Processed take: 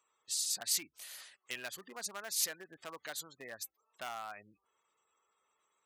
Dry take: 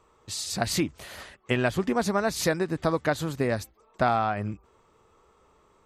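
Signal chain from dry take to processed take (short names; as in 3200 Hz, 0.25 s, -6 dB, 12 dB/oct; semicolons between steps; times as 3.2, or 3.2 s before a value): spectral gate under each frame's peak -25 dB strong; hard clip -18.5 dBFS, distortion -16 dB; differentiator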